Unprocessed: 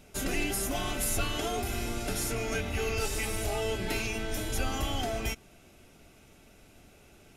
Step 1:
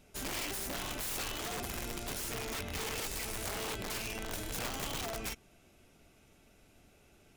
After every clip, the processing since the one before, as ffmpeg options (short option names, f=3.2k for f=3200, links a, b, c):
-af "aeval=exprs='(mod(18.8*val(0)+1,2)-1)/18.8':c=same,volume=-6.5dB"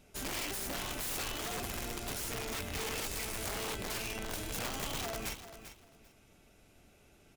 -af "aecho=1:1:394|788:0.251|0.0477"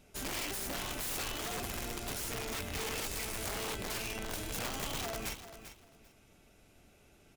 -af anull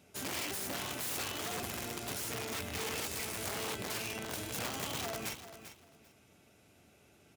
-af "highpass=f=77:w=0.5412,highpass=f=77:w=1.3066"